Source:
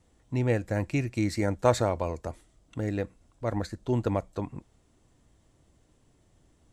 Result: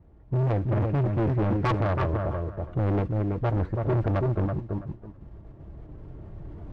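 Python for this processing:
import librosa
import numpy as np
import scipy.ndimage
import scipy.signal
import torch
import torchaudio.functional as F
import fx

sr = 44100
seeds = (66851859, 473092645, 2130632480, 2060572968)

p1 = fx.self_delay(x, sr, depth_ms=0.77)
p2 = fx.recorder_agc(p1, sr, target_db=-15.0, rise_db_per_s=5.8, max_gain_db=30)
p3 = fx.tilt_eq(p2, sr, slope=-2.5)
p4 = fx.mod_noise(p3, sr, seeds[0], snr_db=20)
p5 = scipy.signal.sosfilt(scipy.signal.butter(2, 1300.0, 'lowpass', fs=sr, output='sos'), p4)
p6 = fx.notch_comb(p5, sr, f0_hz=250.0)
p7 = fx.echo_feedback(p6, sr, ms=329, feedback_pct=16, wet_db=-6.0)
p8 = fx.level_steps(p7, sr, step_db=12)
p9 = p7 + F.gain(torch.from_numpy(p8), -1.0).numpy()
p10 = 10.0 ** (-21.0 / 20.0) * np.tanh(p9 / 10.0 ** (-21.0 / 20.0))
p11 = fx.low_shelf(p10, sr, hz=170.0, db=-4.0)
p12 = fx.record_warp(p11, sr, rpm=78.0, depth_cents=100.0)
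y = F.gain(torch.from_numpy(p12), 2.0).numpy()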